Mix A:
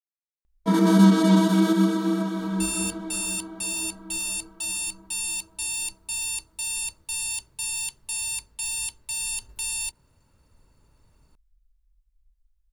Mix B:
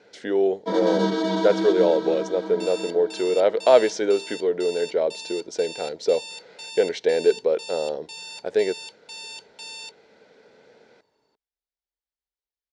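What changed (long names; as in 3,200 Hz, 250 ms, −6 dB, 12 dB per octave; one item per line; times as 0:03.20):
speech: unmuted
master: add loudspeaker in its box 390–5,400 Hz, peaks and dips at 440 Hz +8 dB, 820 Hz +3 dB, 1,200 Hz −10 dB, 2,600 Hz −6 dB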